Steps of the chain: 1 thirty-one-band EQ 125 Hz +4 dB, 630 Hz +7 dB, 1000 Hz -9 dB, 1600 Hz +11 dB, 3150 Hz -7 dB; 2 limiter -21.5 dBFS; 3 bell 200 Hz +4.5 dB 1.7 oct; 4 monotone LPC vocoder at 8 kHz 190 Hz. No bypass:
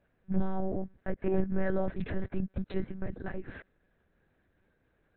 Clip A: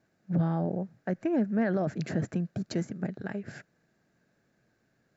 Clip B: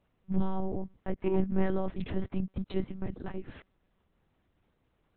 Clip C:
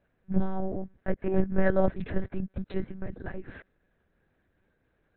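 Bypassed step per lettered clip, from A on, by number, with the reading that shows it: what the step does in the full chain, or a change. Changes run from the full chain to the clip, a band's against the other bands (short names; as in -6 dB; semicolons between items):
4, 500 Hz band -3.0 dB; 1, 2 kHz band -5.0 dB; 2, momentary loudness spread change +5 LU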